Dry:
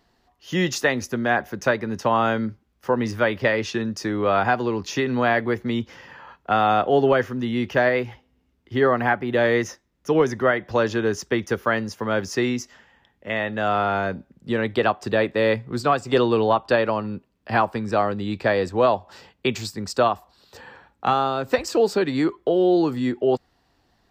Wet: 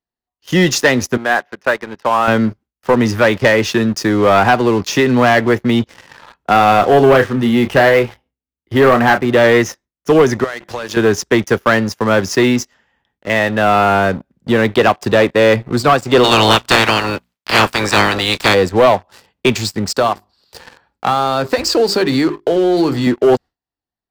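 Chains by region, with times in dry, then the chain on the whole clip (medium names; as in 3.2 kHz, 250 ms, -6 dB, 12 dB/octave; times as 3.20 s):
1.17–2.28 s: high-pass 870 Hz 6 dB/octave + distance through air 270 m
6.52–9.26 s: doubling 30 ms -9.5 dB + decimation joined by straight lines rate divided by 3×
10.44–10.97 s: tilt EQ +2 dB/octave + hum notches 50/100/150/200/250/300/350/400 Hz + compression 16:1, threshold -30 dBFS
16.23–18.53 s: spectral peaks clipped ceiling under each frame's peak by 29 dB + hum notches 60/120/180/240 Hz
19.98–23.07 s: peaking EQ 4.7 kHz +9 dB 0.29 oct + hum notches 50/100/150/200/250/300/350/400 Hz + compression 2.5:1, threshold -22 dBFS
whole clip: gate with hold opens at -48 dBFS; waveshaping leveller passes 3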